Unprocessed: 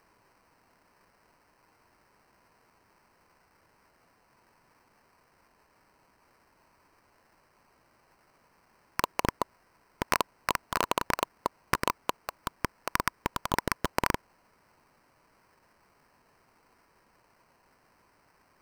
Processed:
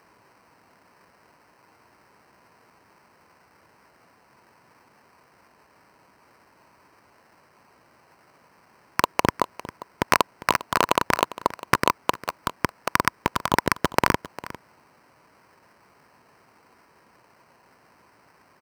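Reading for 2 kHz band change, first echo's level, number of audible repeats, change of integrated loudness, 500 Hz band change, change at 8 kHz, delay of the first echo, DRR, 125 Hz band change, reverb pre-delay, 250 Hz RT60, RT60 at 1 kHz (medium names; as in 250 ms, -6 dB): +8.0 dB, -17.0 dB, 1, +7.5 dB, +8.0 dB, +5.5 dB, 402 ms, no reverb, +7.0 dB, no reverb, no reverb, no reverb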